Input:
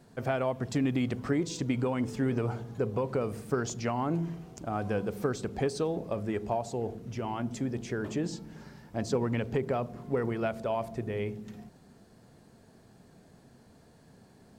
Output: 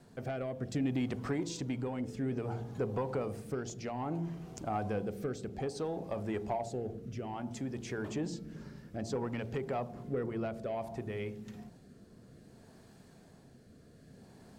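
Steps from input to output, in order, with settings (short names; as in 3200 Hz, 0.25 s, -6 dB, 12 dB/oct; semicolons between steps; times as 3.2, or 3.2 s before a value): de-hum 57.58 Hz, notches 16; dynamic EQ 800 Hz, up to +6 dB, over -49 dBFS, Q 3.1; in parallel at +0.5 dB: compressor, threshold -43 dBFS, peak gain reduction 18 dB; on the sum: soft clip -19 dBFS, distortion -20 dB; rotary speaker horn 0.6 Hz; gain -4 dB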